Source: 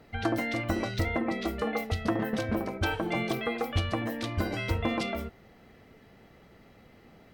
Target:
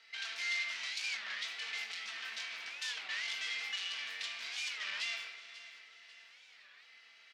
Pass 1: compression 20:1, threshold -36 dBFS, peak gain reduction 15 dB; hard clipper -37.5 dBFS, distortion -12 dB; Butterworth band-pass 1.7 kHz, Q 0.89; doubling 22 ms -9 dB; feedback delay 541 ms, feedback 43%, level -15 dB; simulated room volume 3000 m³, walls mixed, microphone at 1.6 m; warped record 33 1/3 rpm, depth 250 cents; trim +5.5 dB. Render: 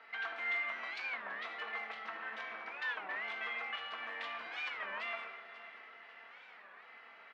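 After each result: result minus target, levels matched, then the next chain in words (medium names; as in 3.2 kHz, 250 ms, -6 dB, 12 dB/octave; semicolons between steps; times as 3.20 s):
compression: peak gain reduction +15 dB; 4 kHz band -8.0 dB
hard clipper -37.5 dBFS, distortion -4 dB; Butterworth band-pass 1.7 kHz, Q 0.89; doubling 22 ms -9 dB; feedback delay 541 ms, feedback 43%, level -15 dB; simulated room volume 3000 m³, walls mixed, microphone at 1.6 m; warped record 33 1/3 rpm, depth 250 cents; trim +5.5 dB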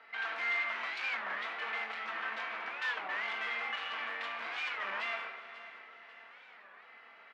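4 kHz band -7.5 dB
hard clipper -37.5 dBFS, distortion -4 dB; Butterworth band-pass 3.7 kHz, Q 0.89; doubling 22 ms -9 dB; feedback delay 541 ms, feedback 43%, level -15 dB; simulated room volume 3000 m³, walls mixed, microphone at 1.6 m; warped record 33 1/3 rpm, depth 250 cents; trim +5.5 dB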